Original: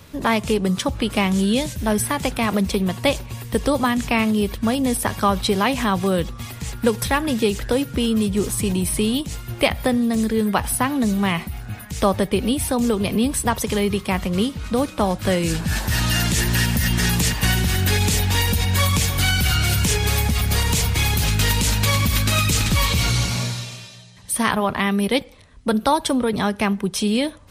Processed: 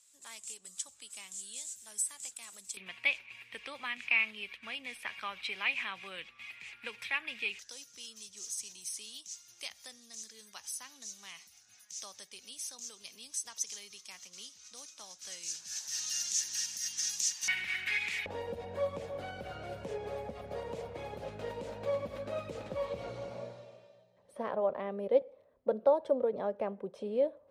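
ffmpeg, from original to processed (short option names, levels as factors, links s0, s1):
-af "asetnsamples=n=441:p=0,asendcmd='2.77 bandpass f 2400;7.59 bandpass f 6100;17.48 bandpass f 2200;18.26 bandpass f 550',bandpass=f=7600:t=q:w=6.2:csg=0"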